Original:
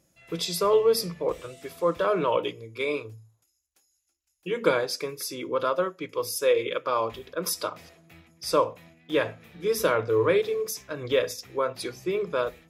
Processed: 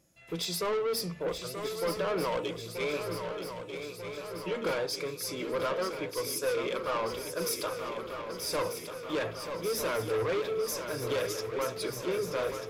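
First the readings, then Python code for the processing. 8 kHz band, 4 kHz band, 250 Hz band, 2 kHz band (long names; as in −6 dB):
−2.0 dB, −2.5 dB, −4.0 dB, −4.0 dB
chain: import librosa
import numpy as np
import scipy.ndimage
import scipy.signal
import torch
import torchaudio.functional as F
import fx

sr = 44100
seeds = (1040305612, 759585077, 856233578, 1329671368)

y = 10.0 ** (-26.0 / 20.0) * np.tanh(x / 10.0 ** (-26.0 / 20.0))
y = fx.echo_swing(y, sr, ms=1241, ratio=3, feedback_pct=63, wet_db=-8.0)
y = y * librosa.db_to_amplitude(-1.5)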